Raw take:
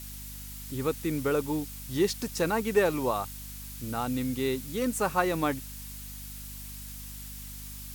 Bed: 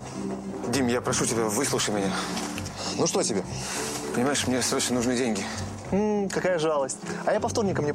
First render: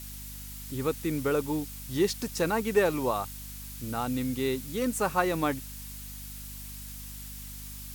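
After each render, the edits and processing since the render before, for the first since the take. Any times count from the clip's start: nothing audible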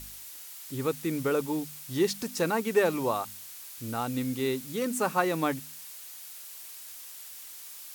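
de-hum 50 Hz, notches 5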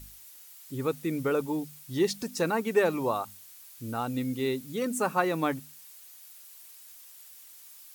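denoiser 8 dB, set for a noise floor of -45 dBFS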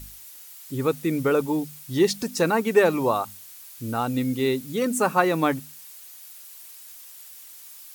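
gain +6 dB

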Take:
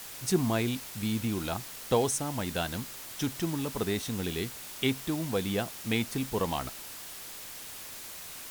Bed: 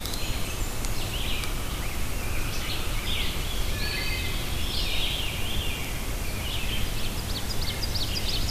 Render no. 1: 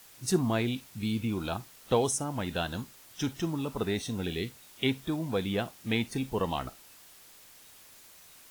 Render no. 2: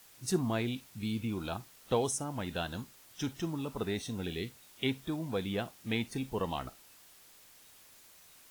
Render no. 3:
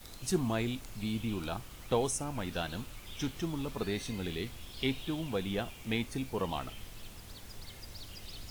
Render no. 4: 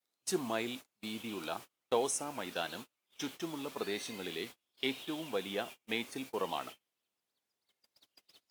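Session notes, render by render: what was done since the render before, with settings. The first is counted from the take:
noise print and reduce 11 dB
gain -4 dB
add bed -19 dB
HPF 330 Hz 12 dB/oct; gate -45 dBFS, range -35 dB

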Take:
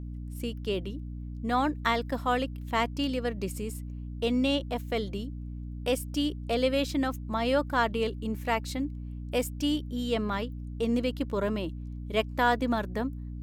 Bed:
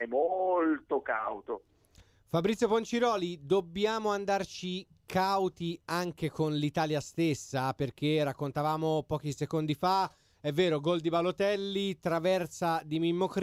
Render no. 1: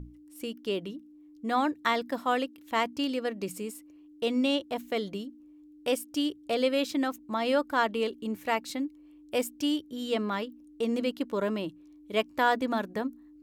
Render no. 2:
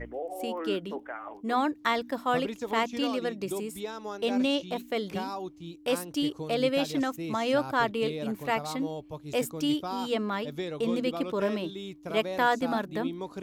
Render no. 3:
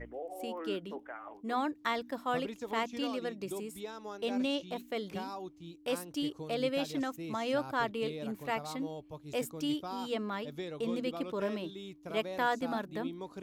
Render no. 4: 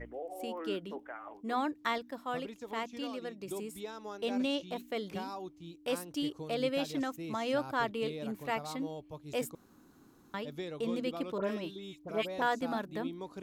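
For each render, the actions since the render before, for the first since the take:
notches 60/120/180/240 Hz
add bed -7.5 dB
gain -6 dB
1.98–3.48 gain -4 dB; 9.55–10.34 room tone; 11.38–12.42 dispersion highs, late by 63 ms, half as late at 2200 Hz

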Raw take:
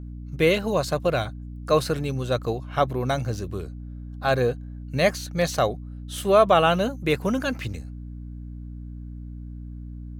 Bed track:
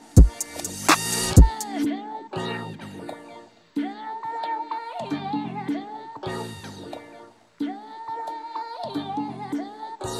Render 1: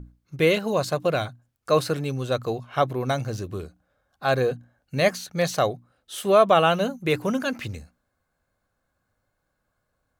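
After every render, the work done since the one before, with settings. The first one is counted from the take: notches 60/120/180/240/300 Hz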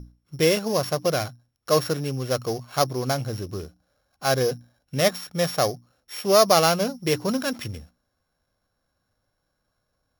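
sample sorter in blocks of 8 samples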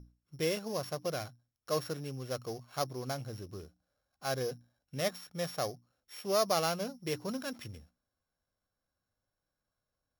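gain -12.5 dB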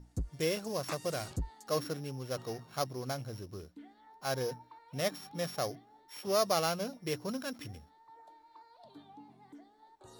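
add bed track -24.5 dB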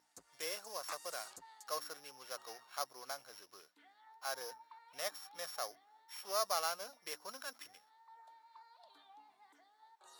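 Chebyshev high-pass 1100 Hz, order 2; dynamic EQ 2700 Hz, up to -7 dB, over -54 dBFS, Q 0.88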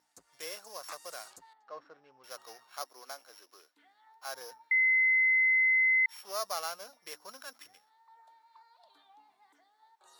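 1.53–2.24 tape spacing loss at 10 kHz 44 dB; 2.82–3.75 steep high-pass 240 Hz; 4.71–6.06 bleep 2050 Hz -22 dBFS

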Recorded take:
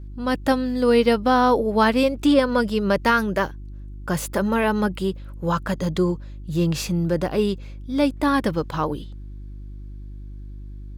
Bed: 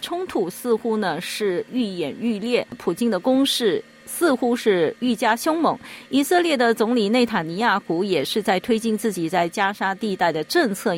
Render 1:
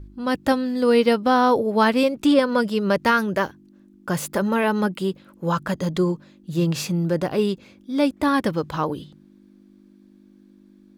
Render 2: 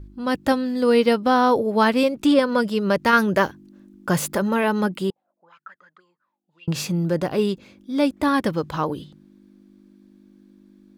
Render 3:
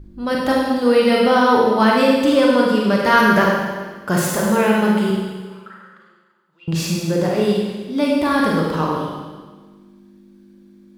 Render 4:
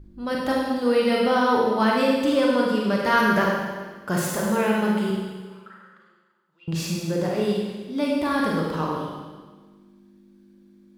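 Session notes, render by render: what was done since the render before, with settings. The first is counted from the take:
de-hum 50 Hz, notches 3
3.13–4.35 gain +3.5 dB; 5.1–6.68 auto-wah 610–2900 Hz, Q 19, up, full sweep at -16 dBFS
Schroeder reverb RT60 1.4 s, combs from 33 ms, DRR -3 dB
gain -6 dB

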